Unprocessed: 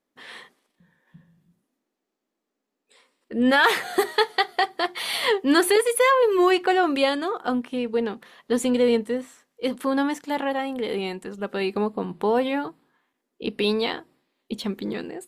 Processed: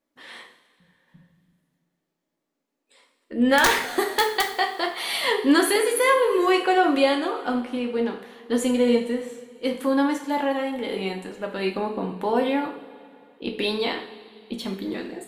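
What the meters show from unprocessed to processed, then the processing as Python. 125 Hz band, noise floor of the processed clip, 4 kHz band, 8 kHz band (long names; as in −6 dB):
can't be measured, −80 dBFS, 0.0 dB, +2.0 dB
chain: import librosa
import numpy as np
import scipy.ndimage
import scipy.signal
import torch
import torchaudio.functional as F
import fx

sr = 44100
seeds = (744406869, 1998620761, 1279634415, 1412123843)

y = (np.mod(10.0 ** (8.0 / 20.0) * x + 1.0, 2.0) - 1.0) / 10.0 ** (8.0 / 20.0)
y = fx.rev_double_slope(y, sr, seeds[0], early_s=0.47, late_s=2.6, knee_db=-18, drr_db=1.5)
y = y * 10.0 ** (-2.0 / 20.0)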